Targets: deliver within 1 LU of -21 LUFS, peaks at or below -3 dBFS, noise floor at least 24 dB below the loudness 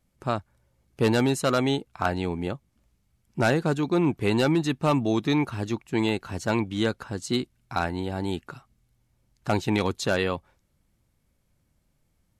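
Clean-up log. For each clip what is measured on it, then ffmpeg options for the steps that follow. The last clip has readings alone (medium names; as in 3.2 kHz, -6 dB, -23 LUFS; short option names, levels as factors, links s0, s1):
loudness -26.5 LUFS; peak level -11.0 dBFS; loudness target -21.0 LUFS
-> -af "volume=1.88"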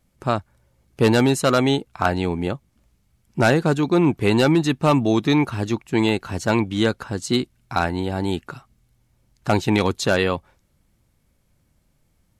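loudness -21.0 LUFS; peak level -5.5 dBFS; noise floor -65 dBFS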